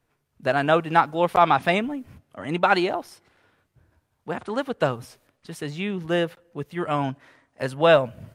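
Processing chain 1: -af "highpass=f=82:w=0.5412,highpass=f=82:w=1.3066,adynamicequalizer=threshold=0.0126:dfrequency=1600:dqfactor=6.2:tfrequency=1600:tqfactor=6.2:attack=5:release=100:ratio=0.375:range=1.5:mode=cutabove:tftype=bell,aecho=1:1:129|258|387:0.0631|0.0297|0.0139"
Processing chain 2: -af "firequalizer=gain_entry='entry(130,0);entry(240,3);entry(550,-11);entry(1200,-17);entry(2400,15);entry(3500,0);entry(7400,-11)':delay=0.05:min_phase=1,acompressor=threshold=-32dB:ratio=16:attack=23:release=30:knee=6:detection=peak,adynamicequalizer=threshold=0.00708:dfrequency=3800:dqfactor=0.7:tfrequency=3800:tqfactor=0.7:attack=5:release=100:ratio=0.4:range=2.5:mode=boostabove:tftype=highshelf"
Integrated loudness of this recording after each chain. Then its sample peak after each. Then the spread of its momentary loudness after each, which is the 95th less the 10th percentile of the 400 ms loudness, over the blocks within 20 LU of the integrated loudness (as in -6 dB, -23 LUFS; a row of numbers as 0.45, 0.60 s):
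-23.5, -31.5 LUFS; -3.5, -13.5 dBFS; 16, 14 LU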